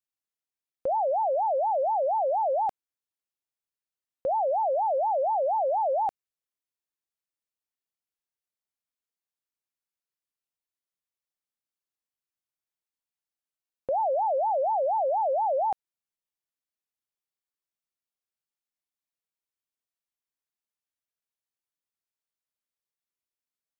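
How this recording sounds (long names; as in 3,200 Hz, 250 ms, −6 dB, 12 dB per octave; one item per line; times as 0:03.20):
background noise floor −94 dBFS
spectral slope −2.0 dB per octave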